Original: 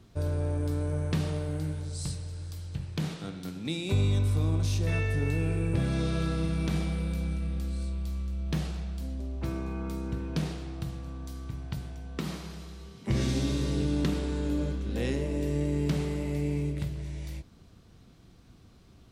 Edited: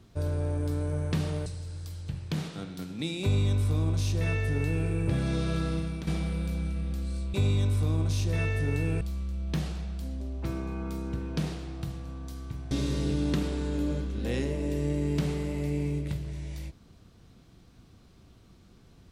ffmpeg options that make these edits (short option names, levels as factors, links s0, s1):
-filter_complex "[0:a]asplit=6[s0][s1][s2][s3][s4][s5];[s0]atrim=end=1.462[s6];[s1]atrim=start=2.118:end=6.73,asetpts=PTS-STARTPTS,afade=t=out:st=4.252:d=0.36:silence=0.316228[s7];[s2]atrim=start=6.73:end=8.002,asetpts=PTS-STARTPTS,afade=t=in:d=0.004:c=hsin:silence=0.316228[s8];[s3]atrim=start=3.878:end=5.552[s9];[s4]atrim=start=7.998:end=11.702[s10];[s5]atrim=start=13.418[s11];[s7][s8]concat=n=2:v=0:a=1[s12];[s6][s12]acrossfade=d=0.004:c1=hsin:c2=hsin[s13];[s13][s9]acrossfade=d=0.004:c1=hsin:c2=hsin[s14];[s14][s10]acrossfade=d=0.004:c1=hsin:c2=hsin[s15];[s15][s11]acrossfade=d=0.004:c1=hsin:c2=hsin"